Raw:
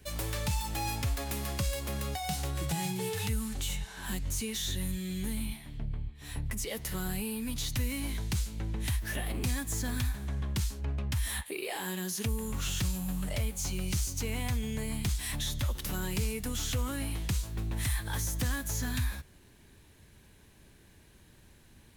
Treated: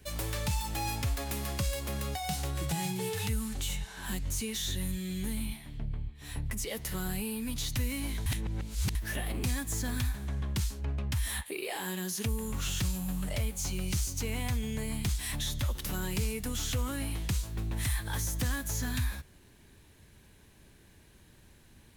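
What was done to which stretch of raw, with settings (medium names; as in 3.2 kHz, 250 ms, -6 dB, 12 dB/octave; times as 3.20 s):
8.26–8.95 s: reverse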